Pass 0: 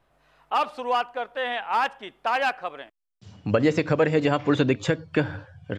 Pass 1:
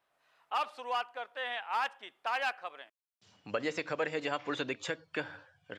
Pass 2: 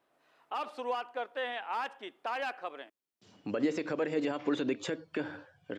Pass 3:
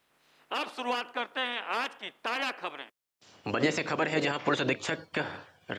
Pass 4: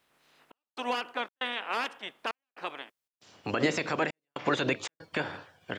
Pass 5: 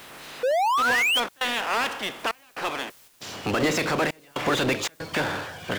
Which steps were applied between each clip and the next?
high-pass filter 1,000 Hz 6 dB per octave; level −6 dB
brickwall limiter −28.5 dBFS, peak gain reduction 9 dB; parametric band 300 Hz +13 dB 1.7 octaves
ceiling on every frequency bin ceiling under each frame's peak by 17 dB; level +3.5 dB
gate pattern "xxxx..xxxx.xxx" 117 BPM −60 dB
sound drawn into the spectrogram rise, 0:00.43–0:01.20, 480–3,400 Hz −27 dBFS; power curve on the samples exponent 0.5; level −1.5 dB

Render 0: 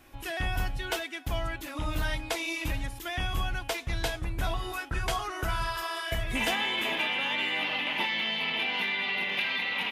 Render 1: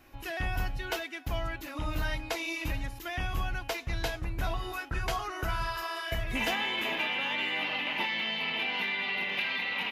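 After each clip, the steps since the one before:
parametric band 8,800 Hz −9 dB 0.41 octaves
notch filter 3,400 Hz, Q 13
level −1.5 dB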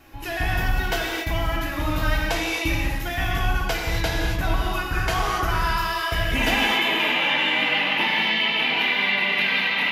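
pitch vibrato 6.6 Hz 37 cents
reverb whose tail is shaped and stops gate 300 ms flat, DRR −2 dB
level +6 dB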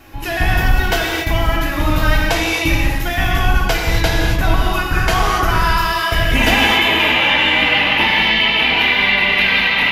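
sub-octave generator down 2 octaves, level −4 dB
level +7.5 dB

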